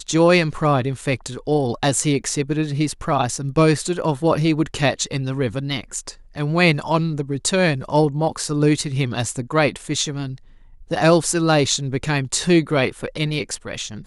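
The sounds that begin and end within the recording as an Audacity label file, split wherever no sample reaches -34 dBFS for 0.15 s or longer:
6.360000	10.360000	sound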